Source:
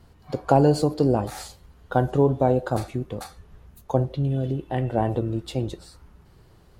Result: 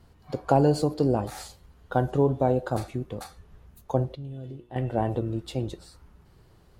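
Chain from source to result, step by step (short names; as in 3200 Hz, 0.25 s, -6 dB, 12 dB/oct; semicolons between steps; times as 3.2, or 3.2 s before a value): 4.15–4.76 resonator 120 Hz, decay 0.41 s, harmonics all, mix 80%; gain -3 dB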